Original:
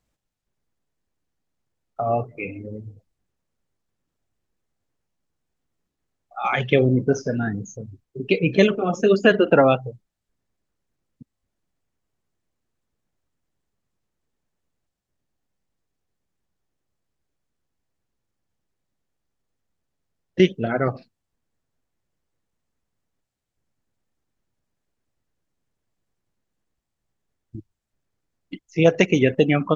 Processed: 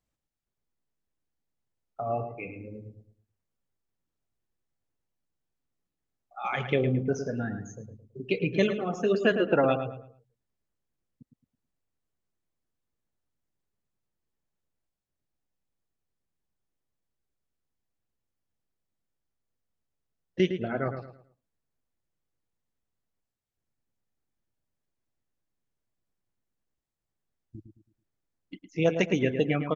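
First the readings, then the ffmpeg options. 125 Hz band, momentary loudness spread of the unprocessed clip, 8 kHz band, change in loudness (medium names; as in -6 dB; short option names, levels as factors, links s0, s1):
-7.5 dB, 19 LU, no reading, -8.0 dB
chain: -filter_complex "[0:a]asplit=2[s0][s1];[s1]adelay=109,lowpass=f=2500:p=1,volume=0.398,asplit=2[s2][s3];[s3]adelay=109,lowpass=f=2500:p=1,volume=0.33,asplit=2[s4][s5];[s5]adelay=109,lowpass=f=2500:p=1,volume=0.33,asplit=2[s6][s7];[s7]adelay=109,lowpass=f=2500:p=1,volume=0.33[s8];[s0][s2][s4][s6][s8]amix=inputs=5:normalize=0,volume=0.376"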